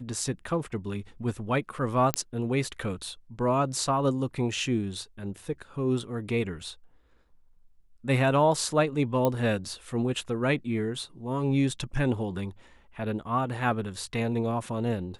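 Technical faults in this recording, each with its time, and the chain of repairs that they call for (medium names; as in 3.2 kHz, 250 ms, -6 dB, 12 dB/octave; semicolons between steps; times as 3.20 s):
2.14 s: pop -7 dBFS
9.25 s: pop -13 dBFS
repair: de-click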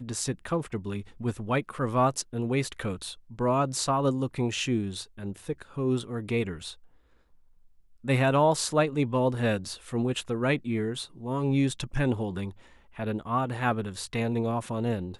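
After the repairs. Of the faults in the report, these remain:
nothing left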